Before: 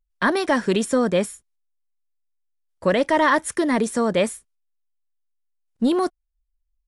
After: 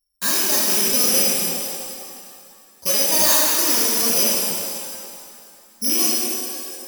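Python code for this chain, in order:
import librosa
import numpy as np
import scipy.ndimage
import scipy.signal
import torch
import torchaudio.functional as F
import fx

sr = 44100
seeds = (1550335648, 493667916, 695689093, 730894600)

y = fx.rattle_buzz(x, sr, strikes_db=-37.0, level_db=-13.0)
y = (np.kron(y[::8], np.eye(8)[0]) * 8)[:len(y)]
y = fx.rev_shimmer(y, sr, seeds[0], rt60_s=2.4, semitones=7, shimmer_db=-8, drr_db=-7.0)
y = y * librosa.db_to_amplitude(-14.5)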